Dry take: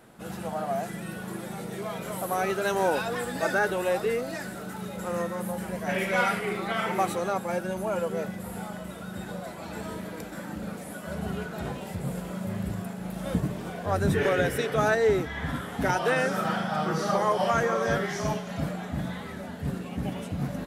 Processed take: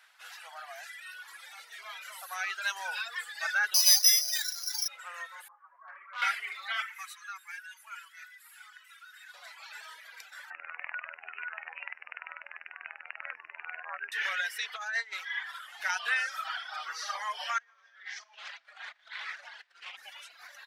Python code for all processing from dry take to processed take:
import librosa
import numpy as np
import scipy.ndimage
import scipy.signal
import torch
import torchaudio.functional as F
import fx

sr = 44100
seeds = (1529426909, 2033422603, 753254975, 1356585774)

y = fx.chain(x, sr, fx.notch(hz=1300.0, q=5.2),
    fx.resample_bad(factor=8, down='filtered', up='zero_stuff'), at=(3.74, 4.88))
y = fx.chain(y, sr, fx.ladder_lowpass(hz=1200.0, resonance_pct=85),
    fx.clip_hard(threshold_db=-29.5), at=(5.48, 6.22))
y = fx.chain(y, sr, fx.highpass(hz=1300.0, slope=24),
    fx.peak_eq(hz=4200.0, db=-6.5, octaves=1.6), at=(6.82, 9.34))
y = fx.chain(y, sr, fx.robotise(hz=81.3),
    fx.resample_bad(factor=8, down='none', up='filtered'),
    fx.env_flatten(amount_pct=50), at=(10.5, 14.12))
y = fx.chain(y, sr, fx.peak_eq(hz=350.0, db=-15.0, octaves=0.23),
    fx.over_compress(threshold_db=-26.0, ratio=-0.5),
    fx.doppler_dist(depth_ms=0.13), at=(14.73, 15.43))
y = fx.chain(y, sr, fx.lowpass(hz=5900.0, slope=12),
    fx.over_compress(threshold_db=-38.0, ratio=-1.0),
    fx.doppler_dist(depth_ms=0.31), at=(17.58, 19.97))
y = fx.dereverb_blind(y, sr, rt60_s=1.7)
y = scipy.signal.sosfilt(scipy.signal.butter(4, 930.0, 'highpass', fs=sr, output='sos'), y)
y = fx.band_shelf(y, sr, hz=3000.0, db=9.5, octaves=2.3)
y = y * 10.0 ** (-7.0 / 20.0)